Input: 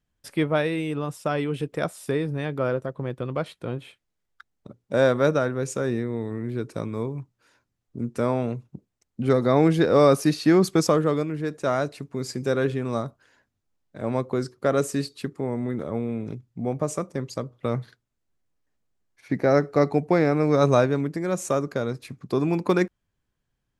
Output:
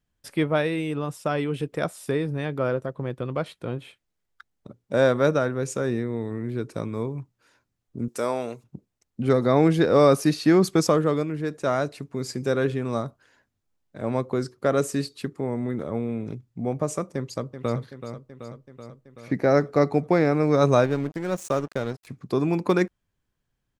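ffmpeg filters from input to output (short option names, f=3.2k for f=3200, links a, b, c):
-filter_complex "[0:a]asettb=1/sr,asplit=3[a][b][c];[a]atrim=end=8.084[d];[b]atrim=start=8.08:end=8.64,asetpts=PTS-STARTPTS,afade=t=in:d=0.004:c=qsin,afade=t=out:st=0.556:d=0.004:c=qsin,bass=f=250:g=-15,treble=f=4k:g=10[e];[c]atrim=start=8.636[f];[d][e]acrossfade=d=0.004:c1=hsin:c2=qsin[g];[g][f]acrossfade=d=0.004:c1=qsin:c2=hsin,asplit=2[h][i];[i]afade=t=in:st=17.15:d=0.01,afade=t=out:st=17.8:d=0.01,aecho=0:1:380|760|1140|1520|1900|2280|2660|3040|3420|3800:0.316228|0.221359|0.154952|0.108466|0.0759263|0.0531484|0.0372039|0.0260427|0.0182299|0.0127609[j];[h][j]amix=inputs=2:normalize=0,asettb=1/sr,asplit=3[k][l][m];[k]atrim=end=20.844[n];[l]atrim=start=20.84:end=22.07,asetpts=PTS-STARTPTS,afade=t=in:d=0.004:c=qsin,afade=t=out:st=1.226:d=0.004:c=qsin,aeval=exprs='sgn(val(0))*max(abs(val(0))-0.0133,0)':c=same[o];[m]atrim=start=22.066[p];[n][o]acrossfade=d=0.004:c1=hsin:c2=qsin[q];[q][p]acrossfade=d=0.004:c1=qsin:c2=hsin"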